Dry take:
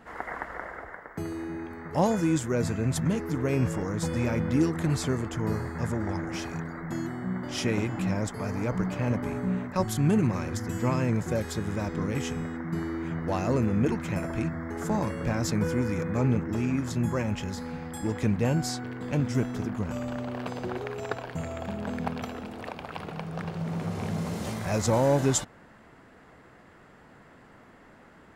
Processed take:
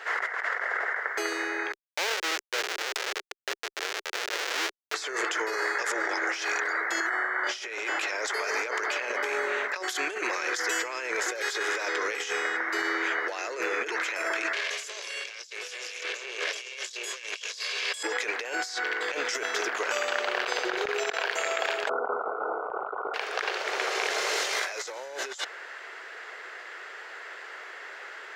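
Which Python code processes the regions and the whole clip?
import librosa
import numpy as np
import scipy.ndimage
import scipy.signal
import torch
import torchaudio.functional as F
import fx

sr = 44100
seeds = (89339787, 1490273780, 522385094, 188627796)

y = fx.chain(x, sr, fx.high_shelf(hz=4700.0, db=-7.5),
    fx.tube_stage(drive_db=34.0, bias=0.4),
    fx.schmitt(flips_db=-35.5), at=(1.72, 4.94))
y = fx.chain(y, sr, fx.highpass(hz=600.0, slope=6),
    fx.high_shelf_res(hz=2300.0, db=-9.0, q=1.5),
    fx.env_flatten(amount_pct=70), at=(7.0, 7.47))
y = fx.chain(y, sr, fx.lower_of_two(delay_ms=1.8),
    fx.band_shelf(hz=5200.0, db=15.0, octaves=2.6), at=(14.53, 18.03))
y = fx.chain(y, sr, fx.brickwall_lowpass(high_hz=1500.0),
    fx.env_flatten(amount_pct=100), at=(21.89, 23.14))
y = scipy.signal.sosfilt(scipy.signal.ellip(4, 1.0, 50, 390.0, 'highpass', fs=sr, output='sos'), y)
y = fx.band_shelf(y, sr, hz=3100.0, db=11.5, octaves=2.6)
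y = fx.over_compress(y, sr, threshold_db=-35.0, ratio=-1.0)
y = y * librosa.db_to_amplitude(2.5)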